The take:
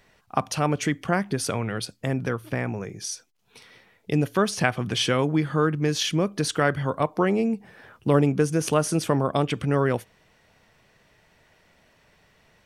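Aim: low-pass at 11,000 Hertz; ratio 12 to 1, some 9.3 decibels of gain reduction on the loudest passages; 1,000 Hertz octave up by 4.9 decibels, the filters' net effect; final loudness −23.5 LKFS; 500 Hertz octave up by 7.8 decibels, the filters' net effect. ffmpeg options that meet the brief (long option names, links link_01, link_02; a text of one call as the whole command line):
ffmpeg -i in.wav -af "lowpass=11000,equalizer=frequency=500:width_type=o:gain=8.5,equalizer=frequency=1000:width_type=o:gain=3.5,acompressor=threshold=-19dB:ratio=12,volume=2.5dB" out.wav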